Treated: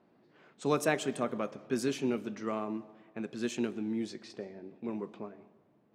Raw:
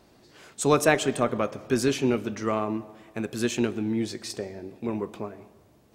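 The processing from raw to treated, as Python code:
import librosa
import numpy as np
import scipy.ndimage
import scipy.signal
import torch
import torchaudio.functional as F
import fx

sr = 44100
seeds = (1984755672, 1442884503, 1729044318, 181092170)

y = fx.low_shelf_res(x, sr, hz=110.0, db=-14.0, q=1.5)
y = fx.env_lowpass(y, sr, base_hz=2100.0, full_db=-19.5)
y = y * 10.0 ** (-9.0 / 20.0)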